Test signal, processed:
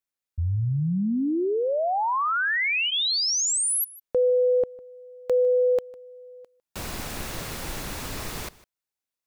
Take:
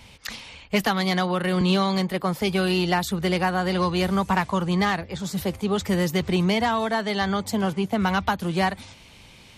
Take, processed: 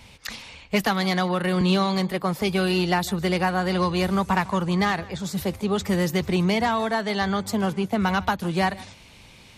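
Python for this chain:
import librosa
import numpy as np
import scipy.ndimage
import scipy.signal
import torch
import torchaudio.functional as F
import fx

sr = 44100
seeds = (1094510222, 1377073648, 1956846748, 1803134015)

p1 = fx.notch(x, sr, hz=3100.0, q=27.0)
y = p1 + fx.echo_single(p1, sr, ms=153, db=-20.5, dry=0)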